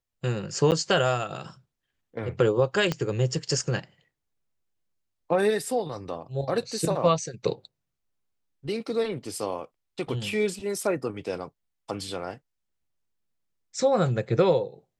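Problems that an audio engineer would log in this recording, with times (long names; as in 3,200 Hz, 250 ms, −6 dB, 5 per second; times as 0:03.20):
0:00.71–0:00.72: drop-out 8.8 ms
0:02.92: click −13 dBFS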